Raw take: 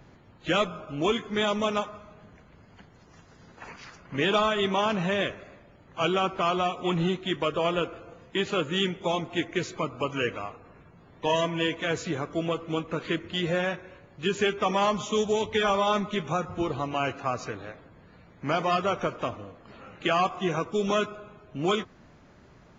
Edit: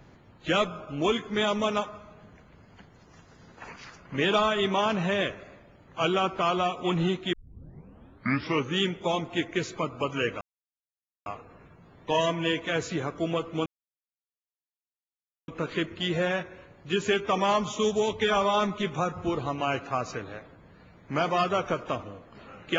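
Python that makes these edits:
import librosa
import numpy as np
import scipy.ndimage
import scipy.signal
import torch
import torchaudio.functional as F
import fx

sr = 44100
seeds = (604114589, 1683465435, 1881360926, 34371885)

y = fx.edit(x, sr, fx.tape_start(start_s=7.33, length_s=1.45),
    fx.insert_silence(at_s=10.41, length_s=0.85),
    fx.insert_silence(at_s=12.81, length_s=1.82), tone=tone)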